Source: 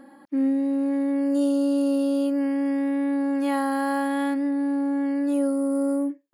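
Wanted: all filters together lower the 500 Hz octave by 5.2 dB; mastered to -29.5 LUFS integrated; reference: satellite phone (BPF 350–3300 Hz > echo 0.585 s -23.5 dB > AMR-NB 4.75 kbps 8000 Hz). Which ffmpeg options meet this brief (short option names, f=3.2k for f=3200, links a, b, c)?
-af "highpass=350,lowpass=3.3k,equalizer=f=500:t=o:g=-5,aecho=1:1:585:0.0668,volume=1.5dB" -ar 8000 -c:a libopencore_amrnb -b:a 4750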